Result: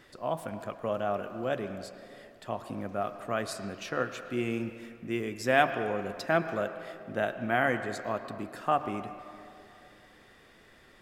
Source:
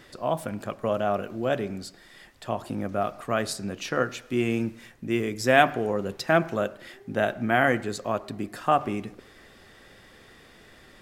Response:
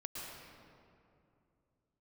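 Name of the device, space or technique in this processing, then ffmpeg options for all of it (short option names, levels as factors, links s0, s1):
filtered reverb send: -filter_complex "[0:a]asplit=2[s0][s1];[s1]highpass=f=540:p=1,lowpass=3400[s2];[1:a]atrim=start_sample=2205[s3];[s2][s3]afir=irnorm=-1:irlink=0,volume=0.596[s4];[s0][s4]amix=inputs=2:normalize=0,volume=0.447"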